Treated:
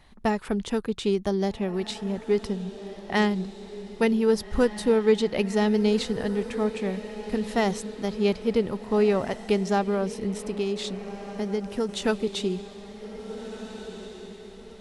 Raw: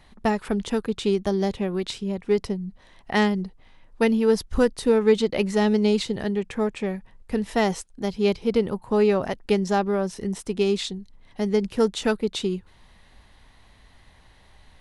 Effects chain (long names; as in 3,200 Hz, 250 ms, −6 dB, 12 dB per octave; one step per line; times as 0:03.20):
on a send: feedback delay with all-pass diffusion 1,672 ms, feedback 41%, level −12.5 dB
0:10.38–0:11.89: on the sum: downward compressor 2 to 1, threshold −25 dBFS, peak gain reduction 6 dB
level −2 dB